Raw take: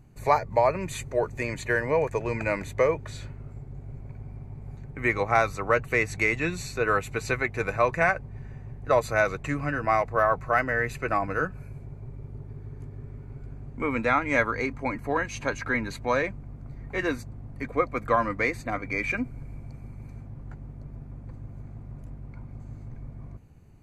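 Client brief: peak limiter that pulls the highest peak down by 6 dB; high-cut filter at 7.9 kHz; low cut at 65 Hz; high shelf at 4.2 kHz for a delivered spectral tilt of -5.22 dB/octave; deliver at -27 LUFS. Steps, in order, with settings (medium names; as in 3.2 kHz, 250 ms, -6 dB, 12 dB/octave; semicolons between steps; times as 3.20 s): high-pass 65 Hz; low-pass 7.9 kHz; treble shelf 4.2 kHz +6 dB; trim +0.5 dB; peak limiter -13 dBFS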